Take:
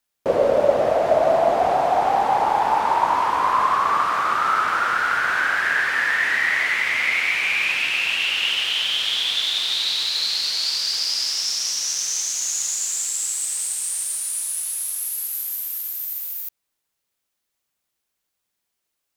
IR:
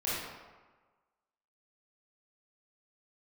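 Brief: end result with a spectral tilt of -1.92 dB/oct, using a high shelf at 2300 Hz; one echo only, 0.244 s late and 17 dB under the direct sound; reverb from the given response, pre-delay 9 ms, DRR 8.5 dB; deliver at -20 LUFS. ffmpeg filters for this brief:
-filter_complex "[0:a]highshelf=f=2.3k:g=-4.5,aecho=1:1:244:0.141,asplit=2[a][b];[1:a]atrim=start_sample=2205,adelay=9[c];[b][c]afir=irnorm=-1:irlink=0,volume=-15.5dB[d];[a][d]amix=inputs=2:normalize=0,volume=1.5dB"

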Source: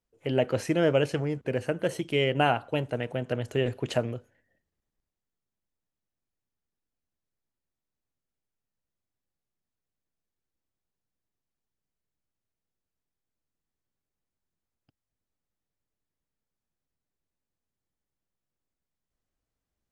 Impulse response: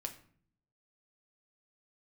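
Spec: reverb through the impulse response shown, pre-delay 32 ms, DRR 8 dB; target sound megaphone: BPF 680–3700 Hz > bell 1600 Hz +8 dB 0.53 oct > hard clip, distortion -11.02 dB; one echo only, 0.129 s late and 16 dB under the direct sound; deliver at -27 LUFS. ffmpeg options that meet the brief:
-filter_complex "[0:a]aecho=1:1:129:0.158,asplit=2[a][b];[1:a]atrim=start_sample=2205,adelay=32[c];[b][c]afir=irnorm=-1:irlink=0,volume=-6.5dB[d];[a][d]amix=inputs=2:normalize=0,highpass=680,lowpass=3.7k,equalizer=f=1.6k:t=o:w=0.53:g=8,asoftclip=type=hard:threshold=-22dB,volume=5dB"

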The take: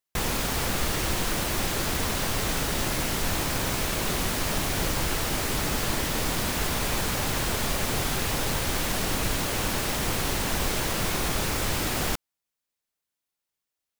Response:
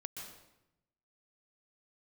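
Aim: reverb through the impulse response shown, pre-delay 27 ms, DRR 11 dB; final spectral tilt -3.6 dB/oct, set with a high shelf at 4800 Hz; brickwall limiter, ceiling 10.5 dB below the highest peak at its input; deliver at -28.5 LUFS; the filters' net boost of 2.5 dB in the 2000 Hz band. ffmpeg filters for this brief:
-filter_complex "[0:a]equalizer=f=2k:t=o:g=4,highshelf=f=4.8k:g=-5,alimiter=limit=-23dB:level=0:latency=1,asplit=2[a][b];[1:a]atrim=start_sample=2205,adelay=27[c];[b][c]afir=irnorm=-1:irlink=0,volume=-9dB[d];[a][d]amix=inputs=2:normalize=0,volume=3.5dB"

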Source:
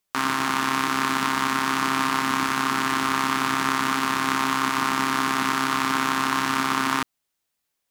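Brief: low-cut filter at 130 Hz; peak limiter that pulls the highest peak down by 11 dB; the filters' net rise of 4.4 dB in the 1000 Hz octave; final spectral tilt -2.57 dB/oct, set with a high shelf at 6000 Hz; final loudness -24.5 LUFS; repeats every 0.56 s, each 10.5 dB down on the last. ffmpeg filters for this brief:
-af "highpass=130,equalizer=f=1k:t=o:g=5,highshelf=f=6k:g=7,alimiter=limit=-13dB:level=0:latency=1,aecho=1:1:560|1120|1680:0.299|0.0896|0.0269,volume=2.5dB"

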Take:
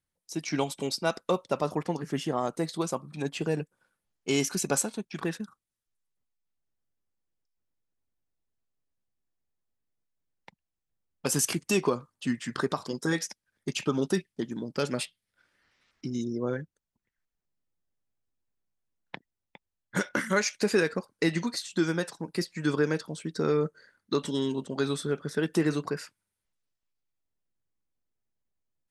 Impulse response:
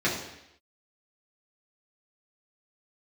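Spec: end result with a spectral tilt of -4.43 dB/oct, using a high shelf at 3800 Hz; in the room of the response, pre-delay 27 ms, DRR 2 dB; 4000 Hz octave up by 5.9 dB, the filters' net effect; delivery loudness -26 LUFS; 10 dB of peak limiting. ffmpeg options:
-filter_complex "[0:a]highshelf=f=3.8k:g=3,equalizer=f=4k:t=o:g=5.5,alimiter=limit=-19dB:level=0:latency=1,asplit=2[a][b];[1:a]atrim=start_sample=2205,adelay=27[c];[b][c]afir=irnorm=-1:irlink=0,volume=-15dB[d];[a][d]amix=inputs=2:normalize=0,volume=3dB"

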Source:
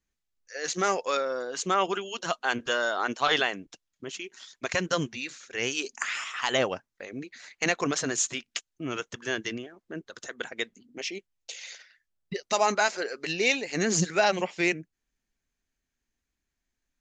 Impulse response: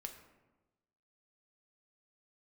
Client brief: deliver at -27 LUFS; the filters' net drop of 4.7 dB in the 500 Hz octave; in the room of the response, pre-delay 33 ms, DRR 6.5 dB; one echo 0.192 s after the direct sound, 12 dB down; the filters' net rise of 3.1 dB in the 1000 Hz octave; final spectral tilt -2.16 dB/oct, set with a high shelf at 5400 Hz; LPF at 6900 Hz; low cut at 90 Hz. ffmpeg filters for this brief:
-filter_complex "[0:a]highpass=90,lowpass=6.9k,equalizer=f=500:t=o:g=-8.5,equalizer=f=1k:t=o:g=6.5,highshelf=f=5.4k:g=4,aecho=1:1:192:0.251,asplit=2[a][b];[1:a]atrim=start_sample=2205,adelay=33[c];[b][c]afir=irnorm=-1:irlink=0,volume=-3dB[d];[a][d]amix=inputs=2:normalize=0"

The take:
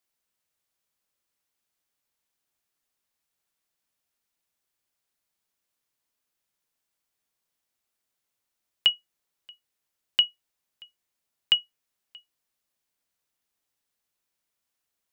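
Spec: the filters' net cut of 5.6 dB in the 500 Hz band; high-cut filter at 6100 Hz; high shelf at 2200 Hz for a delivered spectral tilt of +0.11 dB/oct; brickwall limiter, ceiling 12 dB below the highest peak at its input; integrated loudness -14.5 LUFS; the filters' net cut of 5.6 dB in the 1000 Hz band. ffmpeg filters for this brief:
-af "lowpass=6.1k,equalizer=f=500:t=o:g=-5.5,equalizer=f=1k:t=o:g=-4.5,highshelf=f=2.2k:g=-5.5,volume=24.5dB,alimiter=limit=0dB:level=0:latency=1"

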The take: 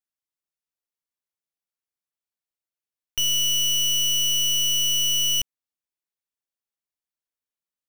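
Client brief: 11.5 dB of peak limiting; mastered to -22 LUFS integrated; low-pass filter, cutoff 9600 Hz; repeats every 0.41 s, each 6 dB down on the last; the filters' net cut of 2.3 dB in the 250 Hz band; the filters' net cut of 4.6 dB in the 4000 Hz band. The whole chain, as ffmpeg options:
-af "lowpass=9.6k,equalizer=f=250:t=o:g=-4.5,equalizer=f=4k:t=o:g=-8,alimiter=level_in=8dB:limit=-24dB:level=0:latency=1,volume=-8dB,aecho=1:1:410|820|1230|1640|2050|2460:0.501|0.251|0.125|0.0626|0.0313|0.0157,volume=13.5dB"

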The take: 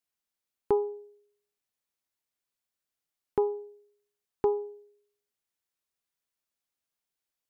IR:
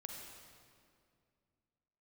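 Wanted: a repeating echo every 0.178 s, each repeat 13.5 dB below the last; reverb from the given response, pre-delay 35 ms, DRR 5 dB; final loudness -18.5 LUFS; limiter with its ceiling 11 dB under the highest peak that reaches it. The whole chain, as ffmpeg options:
-filter_complex "[0:a]alimiter=level_in=2dB:limit=-24dB:level=0:latency=1,volume=-2dB,aecho=1:1:178|356:0.211|0.0444,asplit=2[a][b];[1:a]atrim=start_sample=2205,adelay=35[c];[b][c]afir=irnorm=-1:irlink=0,volume=-2dB[d];[a][d]amix=inputs=2:normalize=0,volume=22dB"

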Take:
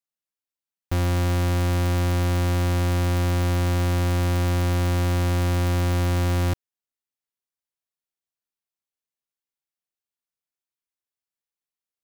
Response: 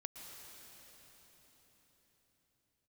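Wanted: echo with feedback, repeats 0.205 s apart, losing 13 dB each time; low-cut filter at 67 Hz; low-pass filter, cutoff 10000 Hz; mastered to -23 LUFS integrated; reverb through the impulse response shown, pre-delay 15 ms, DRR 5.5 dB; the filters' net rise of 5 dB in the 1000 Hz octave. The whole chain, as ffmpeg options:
-filter_complex "[0:a]highpass=67,lowpass=10k,equalizer=f=1k:t=o:g=6.5,aecho=1:1:205|410|615:0.224|0.0493|0.0108,asplit=2[a][b];[1:a]atrim=start_sample=2205,adelay=15[c];[b][c]afir=irnorm=-1:irlink=0,volume=-2.5dB[d];[a][d]amix=inputs=2:normalize=0,volume=-2dB"

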